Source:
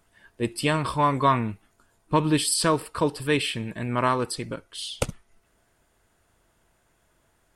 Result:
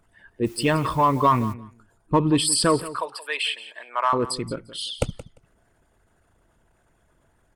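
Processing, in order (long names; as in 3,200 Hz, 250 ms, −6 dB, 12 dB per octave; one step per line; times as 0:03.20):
spectral envelope exaggerated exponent 1.5
0:02.91–0:04.13: high-pass filter 690 Hz 24 dB per octave
in parallel at −7.5 dB: gain into a clipping stage and back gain 19 dB
on the sum: repeating echo 174 ms, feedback 15%, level −16 dB
0:00.45–0:01.52: background noise white −51 dBFS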